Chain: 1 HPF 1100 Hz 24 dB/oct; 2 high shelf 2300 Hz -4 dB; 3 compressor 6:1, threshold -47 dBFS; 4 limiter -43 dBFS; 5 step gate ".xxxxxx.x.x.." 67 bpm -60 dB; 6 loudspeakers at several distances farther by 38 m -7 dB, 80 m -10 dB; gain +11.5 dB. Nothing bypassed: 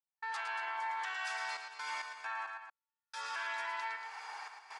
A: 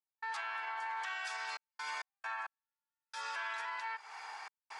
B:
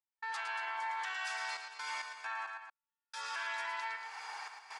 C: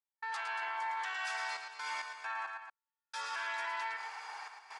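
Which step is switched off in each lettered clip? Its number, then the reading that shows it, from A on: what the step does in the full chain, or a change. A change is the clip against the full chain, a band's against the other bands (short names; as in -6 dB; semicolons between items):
6, echo-to-direct -5.0 dB to none; 2, 8 kHz band +2.0 dB; 3, mean gain reduction 11.0 dB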